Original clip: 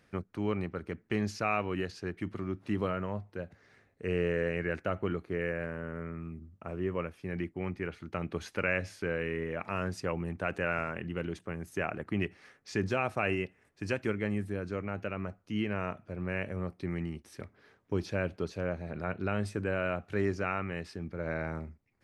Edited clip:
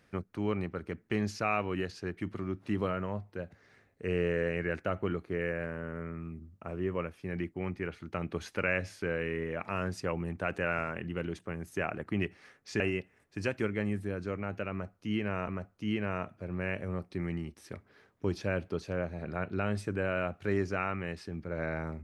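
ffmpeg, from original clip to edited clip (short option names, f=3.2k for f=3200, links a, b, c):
-filter_complex "[0:a]asplit=3[a][b][c];[a]atrim=end=12.802[d];[b]atrim=start=13.248:end=15.932[e];[c]atrim=start=15.158[f];[d][e]acrossfade=d=0.004:c1=hsin:c2=hsin[g];[g][f]acrossfade=d=0.004:c1=hsin:c2=hsin"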